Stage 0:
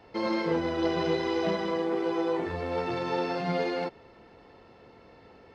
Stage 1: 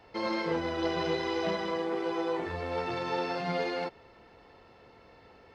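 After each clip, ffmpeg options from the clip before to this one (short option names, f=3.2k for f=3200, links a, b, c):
-af "equalizer=f=240:w=0.54:g=-5"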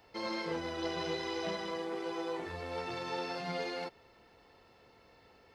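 -af "crystalizer=i=2:c=0,volume=-6.5dB"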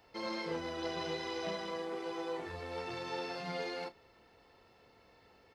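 -filter_complex "[0:a]asplit=2[a][b];[b]adelay=32,volume=-12.5dB[c];[a][c]amix=inputs=2:normalize=0,volume=-2dB"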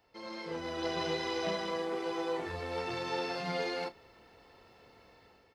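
-af "dynaudnorm=f=250:g=5:m=10.5dB,volume=-6dB"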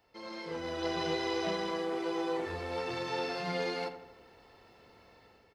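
-filter_complex "[0:a]asplit=2[a][b];[b]adelay=84,lowpass=f=2.2k:p=1,volume=-10dB,asplit=2[c][d];[d]adelay=84,lowpass=f=2.2k:p=1,volume=0.55,asplit=2[e][f];[f]adelay=84,lowpass=f=2.2k:p=1,volume=0.55,asplit=2[g][h];[h]adelay=84,lowpass=f=2.2k:p=1,volume=0.55,asplit=2[i][j];[j]adelay=84,lowpass=f=2.2k:p=1,volume=0.55,asplit=2[k][l];[l]adelay=84,lowpass=f=2.2k:p=1,volume=0.55[m];[a][c][e][g][i][k][m]amix=inputs=7:normalize=0"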